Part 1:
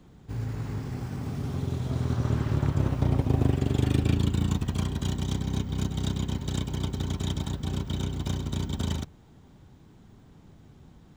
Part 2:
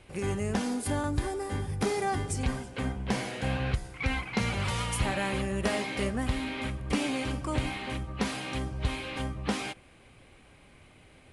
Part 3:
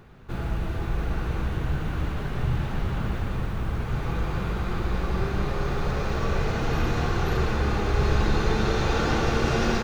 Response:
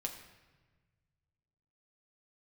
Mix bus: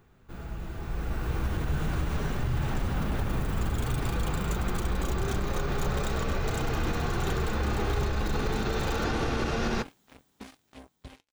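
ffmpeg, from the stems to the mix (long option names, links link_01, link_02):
-filter_complex "[0:a]aemphasis=mode=production:type=riaa,volume=-15dB[link_01];[1:a]equalizer=frequency=270:width_type=o:width=0.28:gain=11,acrusher=bits=3:mix=0:aa=0.5,adelay=2200,volume=-14dB[link_02];[2:a]volume=-6dB[link_03];[link_01][link_03]amix=inputs=2:normalize=0,dynaudnorm=framelen=270:gausssize=9:maxgain=11dB,alimiter=limit=-15.5dB:level=0:latency=1:release=66,volume=0dB[link_04];[link_02][link_04]amix=inputs=2:normalize=0,flanger=delay=2.4:depth=3.1:regen=-77:speed=0.76:shape=triangular"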